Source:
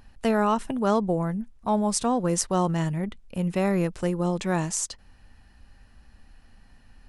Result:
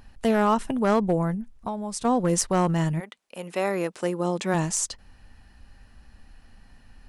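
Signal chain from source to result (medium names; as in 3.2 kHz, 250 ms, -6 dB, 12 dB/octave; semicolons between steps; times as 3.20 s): 1.34–2.05 s: compression 12:1, threshold -30 dBFS, peak gain reduction 11.5 dB; 2.99–4.53 s: high-pass 700 Hz -> 180 Hz 12 dB/octave; hard clipper -16 dBFS, distortion -20 dB; trim +2 dB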